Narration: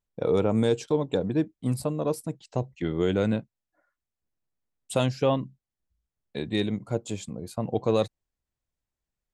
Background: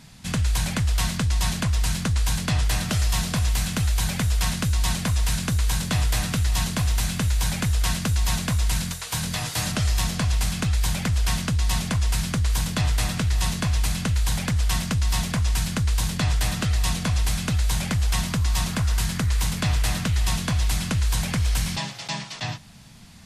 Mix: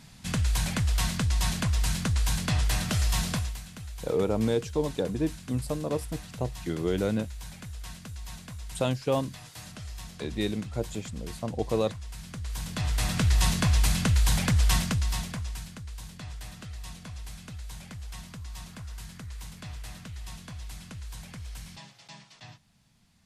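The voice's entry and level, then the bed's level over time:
3.85 s, -3.0 dB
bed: 3.33 s -3.5 dB
3.62 s -18 dB
12.15 s -18 dB
13.26 s 0 dB
14.74 s 0 dB
15.80 s -18 dB

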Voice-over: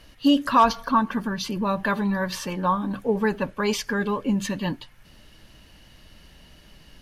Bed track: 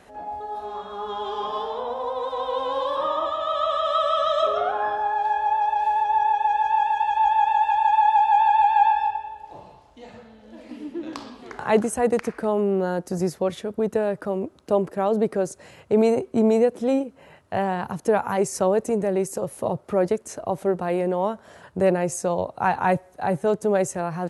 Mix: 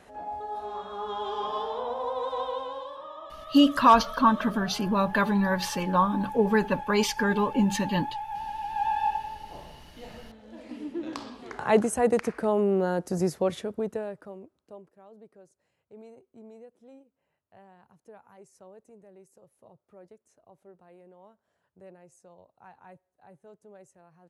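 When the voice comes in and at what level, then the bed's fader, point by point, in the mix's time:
3.30 s, 0.0 dB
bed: 2.40 s -3 dB
3.03 s -17.5 dB
8.62 s -17.5 dB
9.08 s -2 dB
13.59 s -2 dB
14.99 s -30 dB

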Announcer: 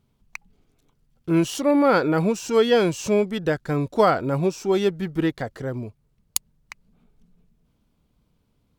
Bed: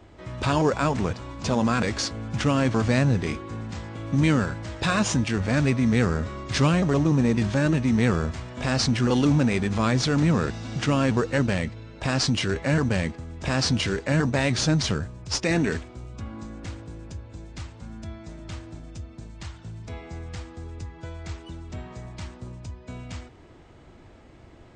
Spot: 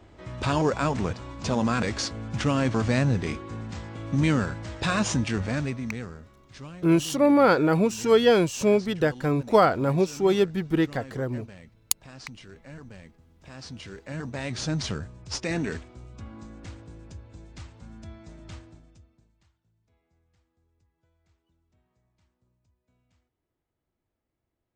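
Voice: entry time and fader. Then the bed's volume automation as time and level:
5.55 s, -0.5 dB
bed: 5.38 s -2 dB
6.35 s -21.5 dB
13.36 s -21.5 dB
14.79 s -5.5 dB
18.56 s -5.5 dB
19.62 s -33.5 dB

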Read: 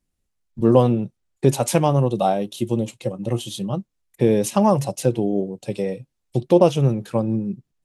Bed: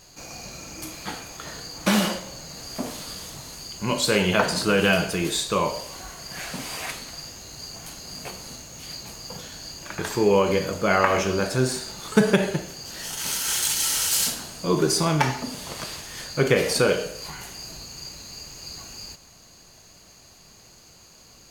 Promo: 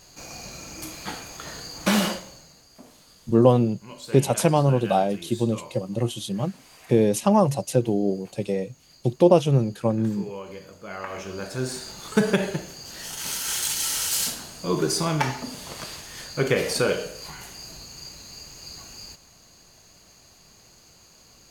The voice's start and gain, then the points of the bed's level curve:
2.70 s, -1.5 dB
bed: 2.10 s -0.5 dB
2.68 s -17.5 dB
10.84 s -17.5 dB
11.87 s -2.5 dB

